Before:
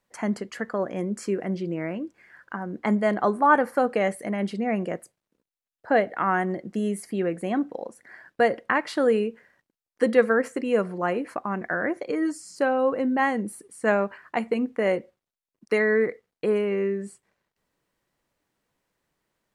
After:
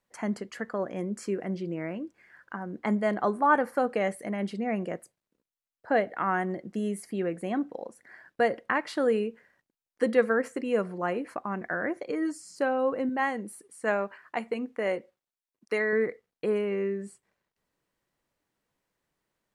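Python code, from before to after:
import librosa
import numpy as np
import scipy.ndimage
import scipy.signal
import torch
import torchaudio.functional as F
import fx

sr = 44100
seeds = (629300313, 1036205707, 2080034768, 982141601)

y = fx.low_shelf(x, sr, hz=250.0, db=-8.0, at=(13.09, 15.93))
y = y * librosa.db_to_amplitude(-4.0)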